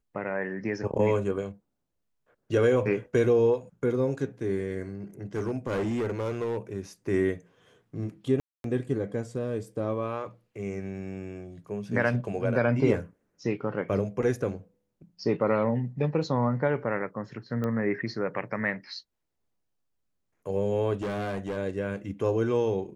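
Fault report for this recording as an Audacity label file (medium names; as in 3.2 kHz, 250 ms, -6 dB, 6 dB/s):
5.350000	6.570000	clipped -25 dBFS
8.400000	8.640000	dropout 242 ms
17.640000	17.640000	pop -20 dBFS
20.930000	21.570000	clipped -28 dBFS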